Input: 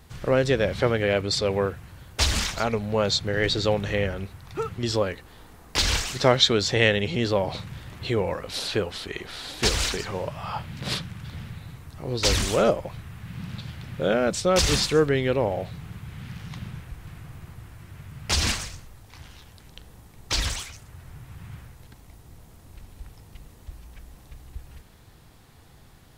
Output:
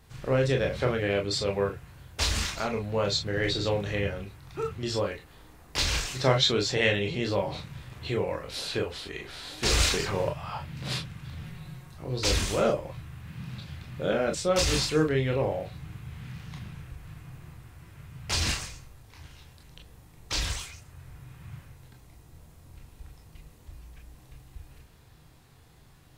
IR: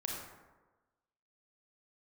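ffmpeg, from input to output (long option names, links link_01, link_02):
-filter_complex "[0:a]asplit=3[link_01][link_02][link_03];[link_01]afade=type=out:start_time=9.68:duration=0.02[link_04];[link_02]acontrast=42,afade=type=in:start_time=9.68:duration=0.02,afade=type=out:start_time=10.29:duration=0.02[link_05];[link_03]afade=type=in:start_time=10.29:duration=0.02[link_06];[link_04][link_05][link_06]amix=inputs=3:normalize=0,asettb=1/sr,asplit=3[link_07][link_08][link_09];[link_07]atrim=end=11.434[link_10];[link_08]atrim=start=11.43:end=11.95,asetpts=PTS-STARTPTS,afade=type=in:duration=0.004:curve=qsin,afade=type=out:start_time=0.516:duration=0.004:curve=qsin,aecho=1:1:5.5:0.7,atrim=end_sample=22932[link_11];[link_09]atrim=start=11.946[link_12];[link_10][link_11]acrossfade=duration=0.004:curve1=hsin:curve2=qsin[link_13];[link_13][link_12]acrossfade=duration=0.004:curve1=qsin:curve2=hsin[link_14];[1:a]atrim=start_sample=2205,atrim=end_sample=3087,asetrate=66150,aresample=44100[link_15];[link_14][link_15]afir=irnorm=-1:irlink=0"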